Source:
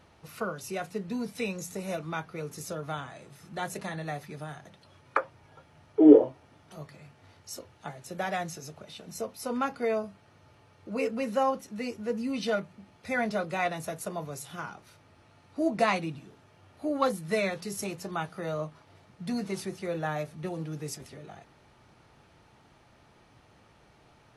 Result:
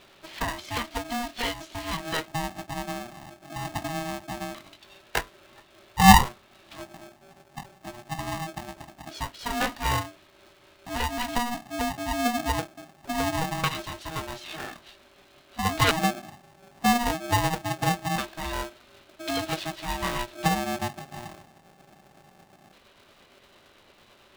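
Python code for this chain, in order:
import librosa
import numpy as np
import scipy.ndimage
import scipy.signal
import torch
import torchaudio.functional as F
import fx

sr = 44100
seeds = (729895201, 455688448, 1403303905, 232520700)

p1 = fx.pitch_glide(x, sr, semitones=-3.5, runs='starting unshifted')
p2 = fx.filter_lfo_lowpass(p1, sr, shape='square', hz=0.22, low_hz=320.0, high_hz=3400.0, q=4.7)
p3 = fx.schmitt(p2, sr, flips_db=-22.0)
p4 = p2 + (p3 * 10.0 ** (-6.5 / 20.0))
p5 = p4 * np.sign(np.sin(2.0 * np.pi * 480.0 * np.arange(len(p4)) / sr))
y = p5 * 10.0 ** (2.5 / 20.0)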